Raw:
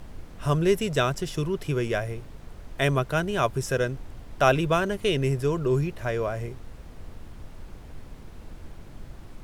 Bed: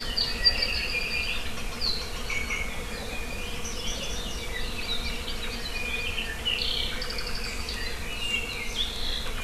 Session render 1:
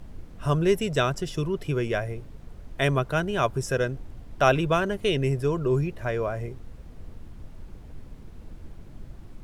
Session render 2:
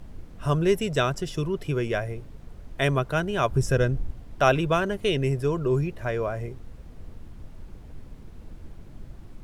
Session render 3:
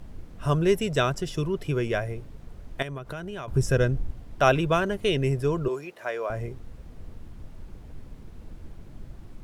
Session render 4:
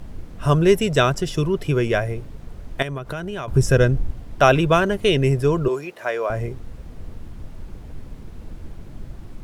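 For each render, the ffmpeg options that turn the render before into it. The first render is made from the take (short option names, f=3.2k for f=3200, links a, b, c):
-af "afftdn=nr=6:nf=-45"
-filter_complex "[0:a]asettb=1/sr,asplit=3[a][b][c];[a]atrim=end=3.514[d];[b]atrim=start=3.51:end=4.11,asetpts=PTS-STARTPTS,afade=t=in:d=0.004:c=qsin,afade=t=out:st=0.596:d=0.004:c=qsin,lowshelf=f=180:g=11[e];[c]atrim=start=4.106[f];[d][e]acrossfade=d=0.004:c1=hsin:c2=qsin[g];[g][f]acrossfade=d=0.004:c1=qsin:c2=hsin"
-filter_complex "[0:a]asettb=1/sr,asplit=3[a][b][c];[a]atrim=end=2.824[d];[b]atrim=start=2.82:end=3.48,asetpts=PTS-STARTPTS,afade=t=in:d=0.004:c=qsin,afade=t=out:st=0.656:d=0.004:c=qsin,acompressor=threshold=-31dB:ratio=16:attack=3.2:release=140:knee=1:detection=peak[e];[c]atrim=start=3.476[f];[d][e]acrossfade=d=0.004:c1=hsin:c2=qsin[g];[g][f]acrossfade=d=0.004:c1=qsin:c2=hsin,asettb=1/sr,asplit=3[h][i][j];[h]atrim=end=5.684[k];[i]atrim=start=5.68:end=6.3,asetpts=PTS-STARTPTS,afade=t=in:d=0.004:c=qsin,afade=t=out:st=0.616:d=0.004:c=qsin,highpass=490[l];[j]atrim=start=6.296[m];[k][l]acrossfade=d=0.004:c1=hsin:c2=qsin[n];[n][m]acrossfade=d=0.004:c1=qsin:c2=hsin"
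-af "volume=6.5dB,alimiter=limit=-1dB:level=0:latency=1"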